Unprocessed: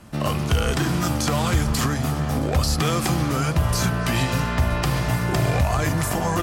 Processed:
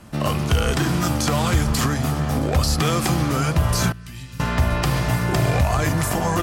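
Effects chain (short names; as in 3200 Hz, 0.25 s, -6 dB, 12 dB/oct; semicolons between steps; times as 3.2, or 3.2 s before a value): 3.92–4.4 passive tone stack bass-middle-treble 6-0-2; gain +1.5 dB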